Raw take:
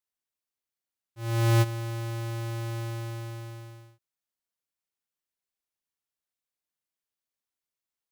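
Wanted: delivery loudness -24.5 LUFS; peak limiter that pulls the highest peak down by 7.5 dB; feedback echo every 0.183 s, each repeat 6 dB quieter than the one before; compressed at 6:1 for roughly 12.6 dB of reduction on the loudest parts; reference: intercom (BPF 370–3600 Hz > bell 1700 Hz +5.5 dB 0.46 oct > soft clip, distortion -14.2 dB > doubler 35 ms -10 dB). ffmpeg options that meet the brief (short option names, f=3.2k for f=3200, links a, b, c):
-filter_complex "[0:a]acompressor=threshold=-35dB:ratio=6,alimiter=level_in=15.5dB:limit=-24dB:level=0:latency=1,volume=-15.5dB,highpass=370,lowpass=3.6k,equalizer=f=1.7k:t=o:w=0.46:g=5.5,aecho=1:1:183|366|549|732|915|1098:0.501|0.251|0.125|0.0626|0.0313|0.0157,asoftclip=threshold=-38.5dB,asplit=2[a][b];[b]adelay=35,volume=-10dB[c];[a][c]amix=inputs=2:normalize=0,volume=24.5dB"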